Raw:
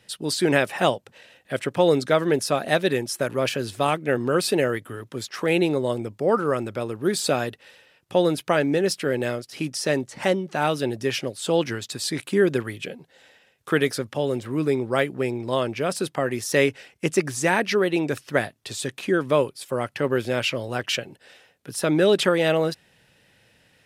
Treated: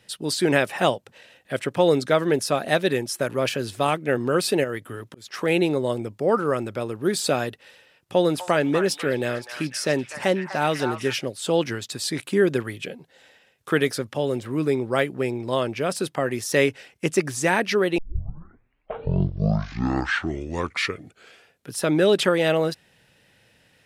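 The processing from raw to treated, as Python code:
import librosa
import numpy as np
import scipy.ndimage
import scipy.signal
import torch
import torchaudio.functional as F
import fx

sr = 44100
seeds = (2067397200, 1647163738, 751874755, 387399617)

y = fx.auto_swell(x, sr, attack_ms=311.0, at=(4.63, 5.25), fade=0.02)
y = fx.echo_stepped(y, sr, ms=248, hz=1200.0, octaves=0.7, feedback_pct=70, wet_db=-4, at=(8.29, 11.12), fade=0.02)
y = fx.edit(y, sr, fx.tape_start(start_s=17.98, length_s=3.73), tone=tone)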